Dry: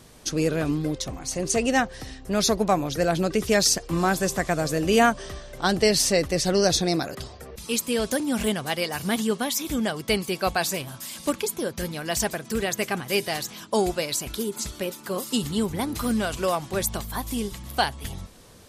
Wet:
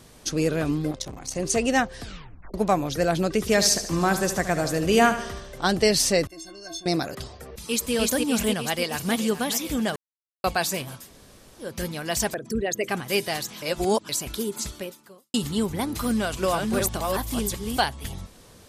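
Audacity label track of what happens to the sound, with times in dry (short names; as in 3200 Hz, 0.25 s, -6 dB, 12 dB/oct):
0.910000	1.360000	core saturation saturates under 730 Hz
1.980000	1.980000	tape stop 0.56 s
3.390000	5.590000	feedback echo 74 ms, feedback 50%, level -11 dB
6.270000	6.860000	metallic resonator 320 Hz, decay 0.28 s, inharmonicity 0.03
7.500000	7.930000	echo throw 0.3 s, feedback 65%, level -0.5 dB
8.640000	9.180000	echo throw 0.42 s, feedback 65%, level -12.5 dB
9.960000	10.440000	mute
11.020000	11.660000	room tone, crossfade 0.16 s
12.340000	12.890000	formant sharpening exponent 2
13.620000	14.090000	reverse
14.680000	15.340000	fade out quadratic
16.050000	17.800000	reverse delay 0.374 s, level -3 dB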